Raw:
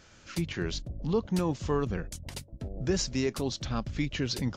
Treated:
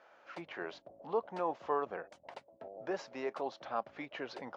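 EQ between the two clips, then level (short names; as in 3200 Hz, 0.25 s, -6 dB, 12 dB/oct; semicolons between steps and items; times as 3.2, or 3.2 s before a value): ladder band-pass 840 Hz, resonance 40%; +11.5 dB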